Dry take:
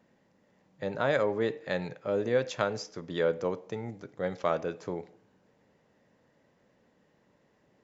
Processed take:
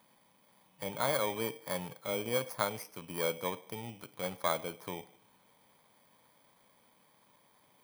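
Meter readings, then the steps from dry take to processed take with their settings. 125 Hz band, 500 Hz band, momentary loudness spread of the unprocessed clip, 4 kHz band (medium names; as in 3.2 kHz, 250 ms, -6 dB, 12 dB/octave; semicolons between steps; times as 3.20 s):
-5.5 dB, -7.0 dB, 11 LU, +2.5 dB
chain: bit-reversed sample order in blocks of 16 samples; fifteen-band graphic EQ 400 Hz -4 dB, 1 kHz +10 dB, 2.5 kHz +4 dB; tape noise reduction on one side only encoder only; trim -5.5 dB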